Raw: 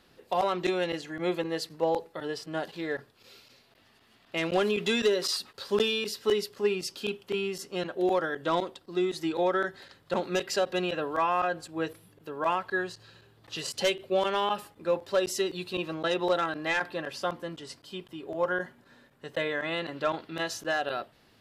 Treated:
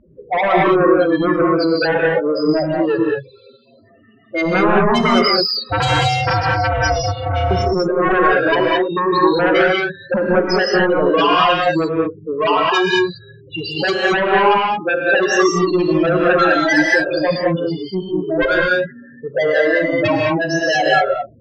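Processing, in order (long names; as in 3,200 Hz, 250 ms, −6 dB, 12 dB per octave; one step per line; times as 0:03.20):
spectral peaks only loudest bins 4
dynamic equaliser 180 Hz, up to +5 dB, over −46 dBFS, Q 1.4
0:05.69–0:07.51: ring modulation 310 Hz
sine wavefolder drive 12 dB, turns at −16 dBFS
low-pass that shuts in the quiet parts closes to 2,000 Hz, open at −17.5 dBFS
reverb whose tail is shaped and stops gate 240 ms rising, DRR −2 dB
level +2.5 dB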